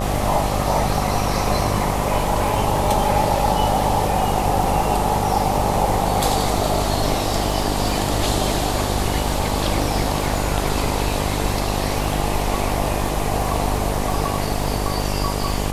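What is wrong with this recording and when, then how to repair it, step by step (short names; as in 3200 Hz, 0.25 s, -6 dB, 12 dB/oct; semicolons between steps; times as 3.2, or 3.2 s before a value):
buzz 50 Hz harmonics 24 -24 dBFS
crackle 52/s -28 dBFS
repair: de-click; de-hum 50 Hz, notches 24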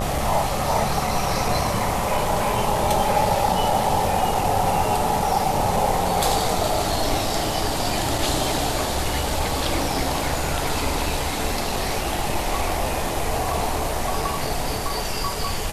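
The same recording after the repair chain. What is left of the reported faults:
none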